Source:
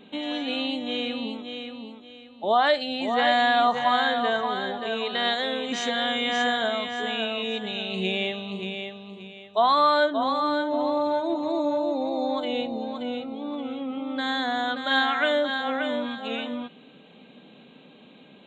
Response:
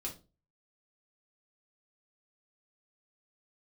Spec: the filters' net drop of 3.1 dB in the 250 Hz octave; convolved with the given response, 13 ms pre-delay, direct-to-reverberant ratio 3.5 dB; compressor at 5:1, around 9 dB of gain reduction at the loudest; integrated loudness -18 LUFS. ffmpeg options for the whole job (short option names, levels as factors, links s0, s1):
-filter_complex "[0:a]equalizer=f=250:t=o:g=-3.5,acompressor=threshold=0.0447:ratio=5,asplit=2[s0][s1];[1:a]atrim=start_sample=2205,adelay=13[s2];[s1][s2]afir=irnorm=-1:irlink=0,volume=0.75[s3];[s0][s3]amix=inputs=2:normalize=0,volume=3.76"